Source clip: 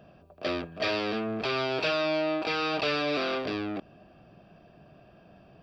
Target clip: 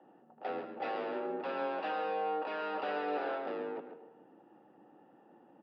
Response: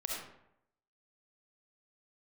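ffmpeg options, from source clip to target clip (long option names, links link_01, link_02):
-filter_complex "[0:a]lowpass=1500,afreqshift=150,asplit=2[link_01][link_02];[link_02]asetrate=29433,aresample=44100,atempo=1.49831,volume=-8dB[link_03];[link_01][link_03]amix=inputs=2:normalize=0,aecho=1:1:138:0.316,asplit=2[link_04][link_05];[1:a]atrim=start_sample=2205,asetrate=34839,aresample=44100[link_06];[link_05][link_06]afir=irnorm=-1:irlink=0,volume=-11.5dB[link_07];[link_04][link_07]amix=inputs=2:normalize=0,volume=-9dB"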